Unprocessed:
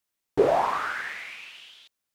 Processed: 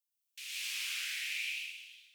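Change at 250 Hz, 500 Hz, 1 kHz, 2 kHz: under -40 dB, under -40 dB, -37.0 dB, -5.0 dB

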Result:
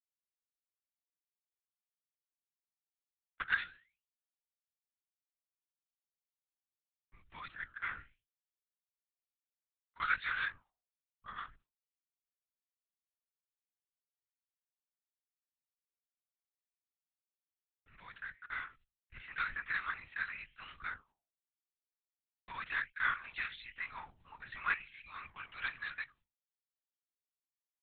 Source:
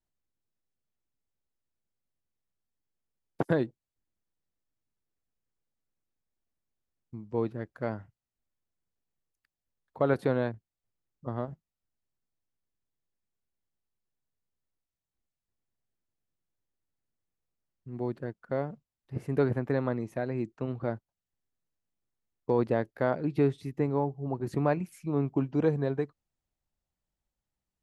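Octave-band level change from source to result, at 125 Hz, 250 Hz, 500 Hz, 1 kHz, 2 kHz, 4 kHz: -30.0 dB, -34.5 dB, -36.5 dB, -5.0 dB, +7.0 dB, no reading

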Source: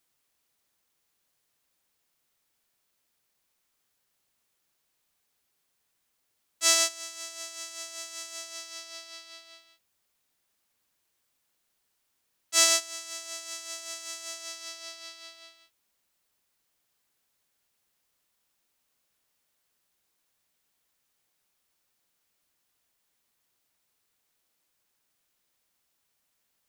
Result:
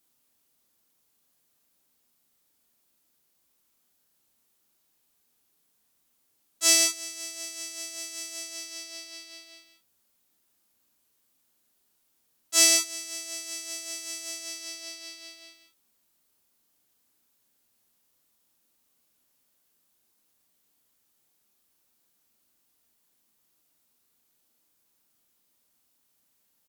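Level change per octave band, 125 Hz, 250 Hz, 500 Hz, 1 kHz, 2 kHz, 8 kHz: no reading, +8.0 dB, 0.0 dB, -5.5 dB, +1.0 dB, +3.5 dB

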